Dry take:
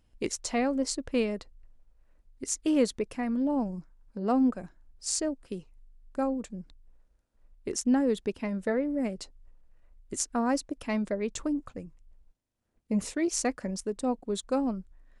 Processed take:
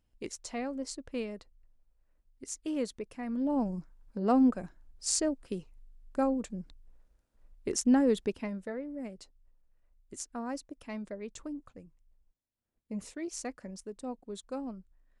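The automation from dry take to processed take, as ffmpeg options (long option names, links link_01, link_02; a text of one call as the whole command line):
ffmpeg -i in.wav -af "volume=0.5dB,afade=type=in:start_time=3.17:duration=0.55:silence=0.354813,afade=type=out:start_time=8.18:duration=0.5:silence=0.298538" out.wav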